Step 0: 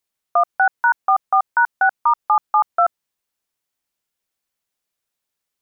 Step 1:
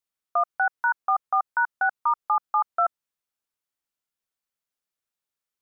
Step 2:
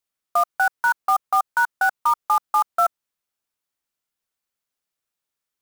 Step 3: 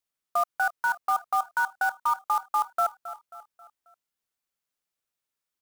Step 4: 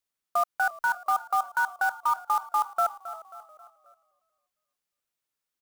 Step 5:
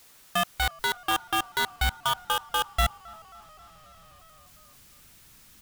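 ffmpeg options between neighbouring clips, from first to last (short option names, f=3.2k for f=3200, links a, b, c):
-af "equalizer=f=1.3k:t=o:w=0.41:g=3.5,volume=-8.5dB"
-af "acrusher=bits=4:mode=log:mix=0:aa=0.000001,volume=3.5dB"
-filter_complex "[0:a]aecho=1:1:269|538|807|1076:0.141|0.0636|0.0286|0.0129,asplit=2[a][b];[b]alimiter=limit=-18dB:level=0:latency=1:release=66,volume=0dB[c];[a][c]amix=inputs=2:normalize=0,volume=-9dB"
-filter_complex "[0:a]asplit=4[a][b][c][d];[b]adelay=353,afreqshift=-41,volume=-20.5dB[e];[c]adelay=706,afreqshift=-82,volume=-29.4dB[f];[d]adelay=1059,afreqshift=-123,volume=-38.2dB[g];[a][e][f][g]amix=inputs=4:normalize=0"
-af "aeval=exprs='val(0)+0.5*0.00944*sgn(val(0))':c=same,aeval=exprs='0.178*(cos(1*acos(clip(val(0)/0.178,-1,1)))-cos(1*PI/2))+0.0708*(cos(3*acos(clip(val(0)/0.178,-1,1)))-cos(3*PI/2))+0.00316*(cos(7*acos(clip(val(0)/0.178,-1,1)))-cos(7*PI/2))':c=same,asubboost=boost=6:cutoff=200,volume=3dB"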